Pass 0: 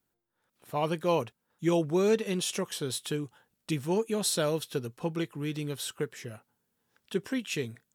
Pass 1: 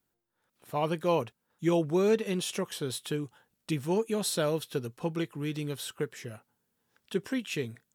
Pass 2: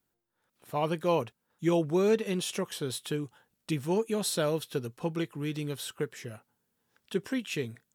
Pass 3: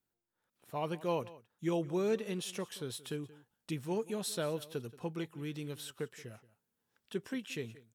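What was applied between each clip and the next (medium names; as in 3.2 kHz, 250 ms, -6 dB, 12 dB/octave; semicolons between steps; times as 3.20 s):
dynamic bell 6.7 kHz, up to -4 dB, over -45 dBFS, Q 0.7
no audible change
delay 178 ms -19 dB; trim -7 dB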